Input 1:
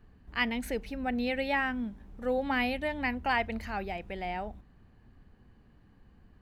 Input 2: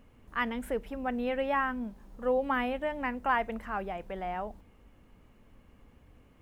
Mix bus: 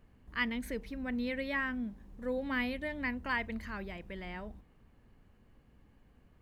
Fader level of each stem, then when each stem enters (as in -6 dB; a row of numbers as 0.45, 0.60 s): -6.0, -8.5 dB; 0.00, 0.00 s